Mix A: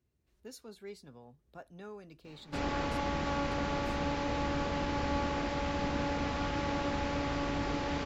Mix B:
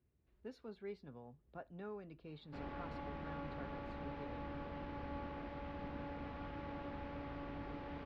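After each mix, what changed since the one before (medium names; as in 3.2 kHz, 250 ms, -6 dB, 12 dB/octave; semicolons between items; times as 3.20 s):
background -12.0 dB; master: add distance through air 350 m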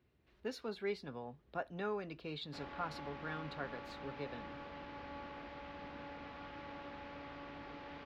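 speech +11.5 dB; master: add tilt EQ +2.5 dB/octave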